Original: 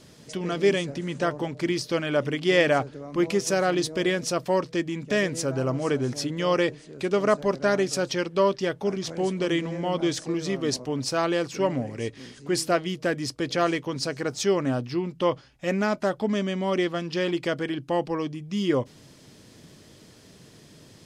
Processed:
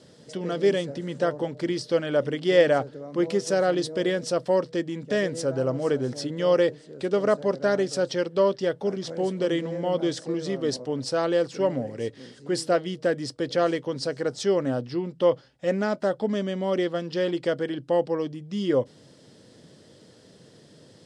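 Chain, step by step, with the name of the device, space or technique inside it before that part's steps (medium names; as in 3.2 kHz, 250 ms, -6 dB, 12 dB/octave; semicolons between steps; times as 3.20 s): car door speaker (cabinet simulation 100–9300 Hz, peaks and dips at 510 Hz +7 dB, 1.1 kHz -4 dB, 2.4 kHz -8 dB, 6.5 kHz -6 dB); trim -1.5 dB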